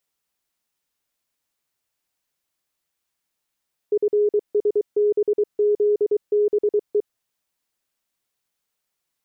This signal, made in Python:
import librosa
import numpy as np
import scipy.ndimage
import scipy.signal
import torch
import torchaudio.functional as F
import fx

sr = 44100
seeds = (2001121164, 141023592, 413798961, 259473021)

y = fx.morse(sr, text='FSBZBE', wpm=23, hz=416.0, level_db=-15.0)